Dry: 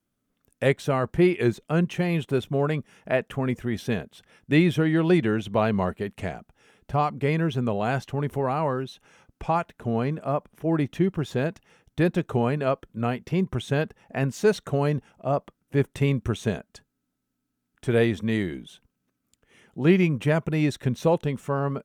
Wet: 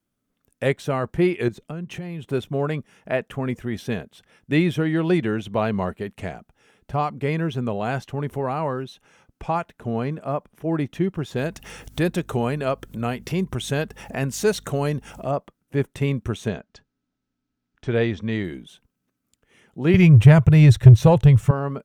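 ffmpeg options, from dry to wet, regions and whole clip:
-filter_complex "[0:a]asettb=1/sr,asplit=3[a][b][c];[a]atrim=end=1.484[d];[b]atrim=start=1.48:end=2.29,asetpts=PTS-STARTPTS,afade=t=in:d=0.004:c=qsin,afade=t=out:st=0.806:d=0.004:c=qsin,equalizer=f=91:w=0.32:g=6,acompressor=threshold=-29dB:ratio=6:attack=3.2:release=140:knee=1:detection=peak[e];[c]atrim=start=2.286[f];[d][e]acrossfade=d=0.004:c1=hsin:c2=qsin[g];[g][f]acrossfade=d=0.004:c1=qsin:c2=hsin,asettb=1/sr,asplit=3[h][i][j];[h]atrim=end=11.364[k];[i]atrim=start=11.36:end=15.31,asetpts=PTS-STARTPTS,afade=t=in:d=0.004:c=qsin,afade=t=out:st=3.946:d=0.004:c=qsin,highshelf=f=4.6k:g=10,acompressor=mode=upward:threshold=-24dB:ratio=2.5:attack=3.2:release=140:knee=2.83:detection=peak,aeval=exprs='val(0)+0.00398*(sin(2*PI*50*n/s)+sin(2*PI*2*50*n/s)/2+sin(2*PI*3*50*n/s)/3+sin(2*PI*4*50*n/s)/4+sin(2*PI*5*50*n/s)/5)':c=same[l];[j]atrim=start=15.306[m];[k][l]acrossfade=d=0.004:c1=hsin:c2=qsin[n];[n][m]acrossfade=d=0.004:c1=qsin:c2=hsin,asettb=1/sr,asplit=3[o][p][q];[o]atrim=end=16.484[r];[p]atrim=start=16.48:end=18.44,asetpts=PTS-STARTPTS,afade=t=in:d=0.004:c=qsin,afade=t=out:st=1.956:d=0.004:c=qsin,lowpass=f=6k:w=0.5412,lowpass=f=6k:w=1.3066,asubboost=boost=2:cutoff=120[s];[q]atrim=start=18.436[t];[r][s]acrossfade=d=0.004:c1=hsin:c2=qsin[u];[u][t]acrossfade=d=0.004:c1=qsin:c2=hsin,asettb=1/sr,asplit=3[v][w][x];[v]atrim=end=19.944[y];[w]atrim=start=19.94:end=21.51,asetpts=PTS-STARTPTS,afade=t=in:d=0.004:c=qsin,afade=t=out:st=1.566:d=0.004:c=qsin,lowshelf=f=160:t=q:w=3:g=13.5,acontrast=58[z];[x]atrim=start=21.506[aa];[y][z]acrossfade=d=0.004:c1=hsin:c2=qsin[ab];[ab][aa]acrossfade=d=0.004:c1=qsin:c2=hsin"

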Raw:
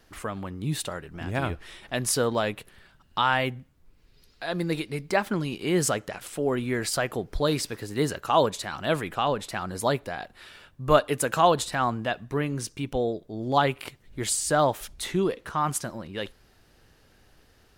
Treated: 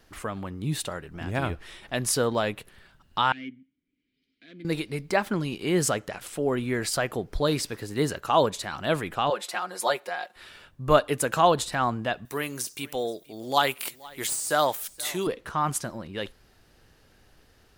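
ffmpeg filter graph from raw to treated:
-filter_complex "[0:a]asettb=1/sr,asplit=3[a][b][c];[a]atrim=end=3.324[d];[b]atrim=start=3.32:end=4.65,asetpts=PTS-STARTPTS,afade=t=in:d=0.004:c=qsin,afade=t=out:st=1.326:d=0.004:c=qsin,aeval=exprs='clip(val(0),-1,0.0398)':c=same,asplit=3[e][f][g];[e]bandpass=f=270:t=q:w=8,volume=0dB[h];[f]bandpass=f=2.29k:t=q:w=8,volume=-6dB[i];[g]bandpass=f=3.01k:t=q:w=8,volume=-9dB[j];[h][i][j]amix=inputs=3:normalize=0[k];[c]atrim=start=4.646[l];[d][k]acrossfade=d=0.004:c1=hsin:c2=qsin[m];[m][l]acrossfade=d=0.004:c1=qsin:c2=hsin,asettb=1/sr,asplit=3[n][o][p];[n]atrim=end=9.304[q];[o]atrim=start=9.3:end=10.36,asetpts=PTS-STARTPTS,afade=t=in:d=0.004:c=qsin,afade=t=out:st=1.056:d=0.004:c=qsin,highpass=510,aecho=1:1:5.6:0.89,atrim=end_sample=46746[r];[p]atrim=start=10.356[s];[q][r]acrossfade=d=0.004:c1=hsin:c2=qsin[t];[t][s]acrossfade=d=0.004:c1=qsin:c2=hsin,asettb=1/sr,asplit=3[u][v][w];[u]atrim=end=12.254[x];[v]atrim=start=12.25:end=15.27,asetpts=PTS-STARTPTS,afade=t=in:d=0.004:c=qsin,afade=t=out:st=3.016:d=0.004:c=qsin,aemphasis=mode=production:type=riaa,deesser=0.4,aecho=1:1:475:0.075,atrim=end_sample=133182[y];[w]atrim=start=15.266[z];[x][y]acrossfade=d=0.004:c1=hsin:c2=qsin[aa];[aa][z]acrossfade=d=0.004:c1=qsin:c2=hsin"

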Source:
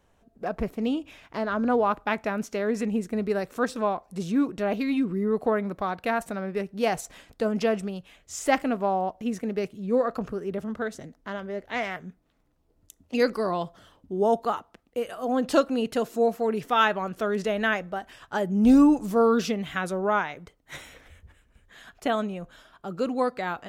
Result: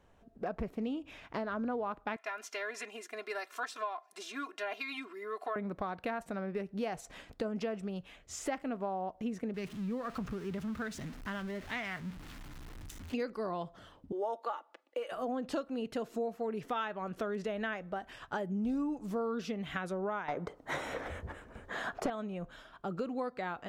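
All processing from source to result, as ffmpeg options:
-filter_complex "[0:a]asettb=1/sr,asplit=3[a][b][c];[a]atrim=end=2.164[d];[b]atrim=start=2.16:end=5.56,asetpts=PTS-STARTPTS,afade=t=in:d=0.004:c=qsin,afade=t=out:st=3.396:d=0.004:c=qsin,highpass=1.1k,aecho=1:1:2.9:0.95,atrim=end_sample=149940[e];[c]atrim=start=5.556[f];[d][e]acrossfade=d=0.004:c1=hsin:c2=qsin[g];[g][f]acrossfade=d=0.004:c1=qsin:c2=hsin,asettb=1/sr,asplit=3[h][i][j];[h]atrim=end=9.544[k];[i]atrim=start=9.54:end=13.14,asetpts=PTS-STARTPTS,afade=t=in:d=0.004:c=qsin,afade=t=out:st=3.596:d=0.004:c=qsin,aeval=exprs='val(0)+0.5*0.0106*sgn(val(0))':c=same,equalizer=f=530:w=0.89:g=-11.5[l];[j]atrim=start=13.136[m];[k][l]acrossfade=d=0.004:c1=hsin:c2=qsin[n];[n][m]acrossfade=d=0.004:c1=qsin:c2=hsin,asettb=1/sr,asplit=3[o][p][q];[o]atrim=end=14.124[r];[p]atrim=start=14.12:end=15.12,asetpts=PTS-STARTPTS,afade=t=in:d=0.004:c=qsin,afade=t=out:st=0.996:d=0.004:c=qsin,highpass=f=410:w=0.5412,highpass=f=410:w=1.3066,highshelf=f=9.7k:g=-9,aecho=1:1:3.5:0.56,atrim=end_sample=44100[s];[q]atrim=start=15.116[t];[r][s]acrossfade=d=0.004:c1=hsin:c2=qsin[u];[u][t]acrossfade=d=0.004:c1=qsin:c2=hsin,asettb=1/sr,asplit=3[v][w][x];[v]atrim=end=20.284[y];[w]atrim=start=20.28:end=22.1,asetpts=PTS-STARTPTS,afade=t=in:d=0.004:c=qsin,afade=t=out:st=1.816:d=0.004:c=qsin,equalizer=f=2.6k:w=0.73:g=-12,acontrast=69,asplit=2[z][aa];[aa]highpass=f=720:p=1,volume=24dB,asoftclip=type=tanh:threshold=-10dB[ab];[z][ab]amix=inputs=2:normalize=0,lowpass=f=1.7k:p=1,volume=-6dB[ac];[x]atrim=start=22.096[ad];[y][ac]acrossfade=d=0.004:c1=hsin:c2=qsin[ae];[ae][ad]acrossfade=d=0.004:c1=qsin:c2=hsin,acompressor=threshold=-34dB:ratio=5,highshelf=f=6k:g=-10"

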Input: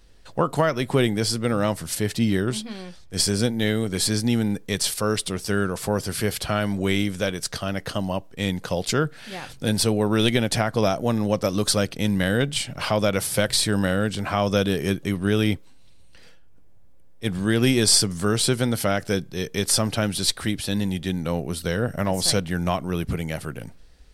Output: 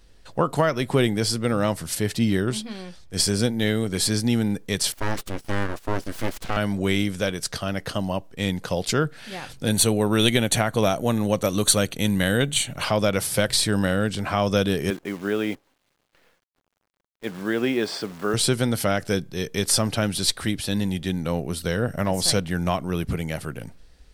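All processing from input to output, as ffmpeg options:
-filter_complex "[0:a]asettb=1/sr,asplit=3[a][b][c];[a]atrim=end=4.924[d];[b]atrim=start=4.92:end=6.57,asetpts=PTS-STARTPTS,afade=t=in:d=0.004:c=qsin,afade=t=out:st=1.646:d=0.004:c=qsin,highshelf=f=3.5k:g=-8,aeval=exprs='abs(val(0))':c=same,agate=range=-11dB:threshold=-36dB:ratio=16:release=100:detection=peak[e];[c]atrim=start=6.566[f];[d][e]acrossfade=d=0.004:c1=hsin:c2=qsin[g];[g][f]acrossfade=d=0.004:c1=qsin:c2=hsin,asettb=1/sr,asplit=3[h][i][j];[h]atrim=end=9.704[k];[i]atrim=start=9.7:end=12.84,asetpts=PTS-STARTPTS,afade=t=in:d=0.004:c=qsin,afade=t=out:st=3.136:d=0.004:c=qsin,asuperstop=centerf=5100:order=4:qfactor=4.2,highshelf=f=3.9k:g=7[l];[j]atrim=start=12.836[m];[k][l]acrossfade=d=0.004:c1=hsin:c2=qsin[n];[n][m]acrossfade=d=0.004:c1=qsin:c2=hsin,asettb=1/sr,asplit=3[o][p][q];[o]atrim=end=14.904[r];[p]atrim=start=14.9:end=18.34,asetpts=PTS-STARTPTS,afade=t=in:d=0.004:c=qsin,afade=t=out:st=3.436:d=0.004:c=qsin,highpass=290,lowpass=2.2k,acrusher=bits=8:dc=4:mix=0:aa=0.000001[s];[q]atrim=start=18.336[t];[r][s]acrossfade=d=0.004:c1=hsin:c2=qsin[u];[u][t]acrossfade=d=0.004:c1=qsin:c2=hsin"

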